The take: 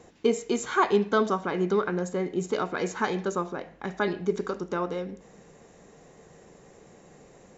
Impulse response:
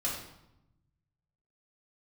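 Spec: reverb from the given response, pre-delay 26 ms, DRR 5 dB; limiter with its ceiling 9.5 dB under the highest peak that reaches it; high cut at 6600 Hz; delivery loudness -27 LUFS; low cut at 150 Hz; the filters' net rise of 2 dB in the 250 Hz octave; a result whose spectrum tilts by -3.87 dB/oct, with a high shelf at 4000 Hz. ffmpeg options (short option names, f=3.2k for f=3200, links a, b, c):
-filter_complex "[0:a]highpass=150,lowpass=6.6k,equalizer=f=250:t=o:g=4,highshelf=f=4k:g=-8.5,alimiter=limit=-20dB:level=0:latency=1,asplit=2[a][b];[1:a]atrim=start_sample=2205,adelay=26[c];[b][c]afir=irnorm=-1:irlink=0,volume=-10dB[d];[a][d]amix=inputs=2:normalize=0,volume=3dB"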